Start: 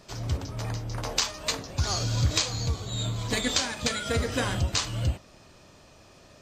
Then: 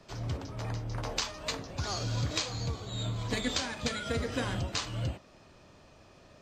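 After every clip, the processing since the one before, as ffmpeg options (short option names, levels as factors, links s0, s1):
-filter_complex "[0:a]highshelf=f=5800:g=-11,acrossover=split=360|3000[s0][s1][s2];[s1]acompressor=threshold=0.0224:ratio=2[s3];[s0][s3][s2]amix=inputs=3:normalize=0,acrossover=split=170[s4][s5];[s4]alimiter=level_in=1.33:limit=0.0631:level=0:latency=1:release=485,volume=0.75[s6];[s6][s5]amix=inputs=2:normalize=0,volume=0.75"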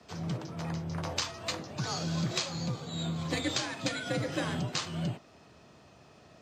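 -af "afreqshift=50"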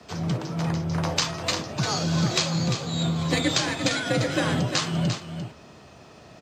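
-af "aecho=1:1:347:0.376,volume=2.51"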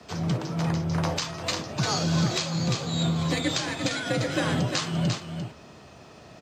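-af "alimiter=limit=0.2:level=0:latency=1:release=406"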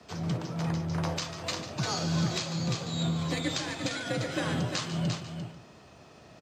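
-af "aecho=1:1:145:0.237,volume=0.562"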